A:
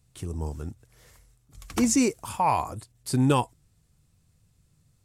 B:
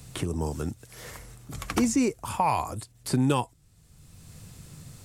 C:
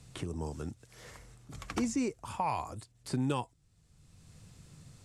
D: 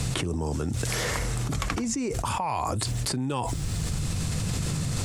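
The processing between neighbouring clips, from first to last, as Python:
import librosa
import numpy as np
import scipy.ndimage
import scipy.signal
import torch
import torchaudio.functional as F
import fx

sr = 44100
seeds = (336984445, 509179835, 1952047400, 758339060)

y1 = fx.band_squash(x, sr, depth_pct=70)
y2 = scipy.signal.sosfilt(scipy.signal.butter(2, 8500.0, 'lowpass', fs=sr, output='sos'), y1)
y2 = y2 * 10.0 ** (-8.0 / 20.0)
y3 = fx.env_flatten(y2, sr, amount_pct=100)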